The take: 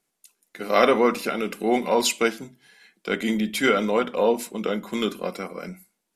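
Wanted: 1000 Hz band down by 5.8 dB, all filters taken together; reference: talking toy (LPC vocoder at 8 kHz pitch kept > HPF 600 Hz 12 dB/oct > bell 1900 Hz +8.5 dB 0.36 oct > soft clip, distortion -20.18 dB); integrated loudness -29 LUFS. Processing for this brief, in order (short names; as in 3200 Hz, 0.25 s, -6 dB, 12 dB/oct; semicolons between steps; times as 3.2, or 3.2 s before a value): bell 1000 Hz -8 dB; LPC vocoder at 8 kHz pitch kept; HPF 600 Hz 12 dB/oct; bell 1900 Hz +8.5 dB 0.36 oct; soft clip -11.5 dBFS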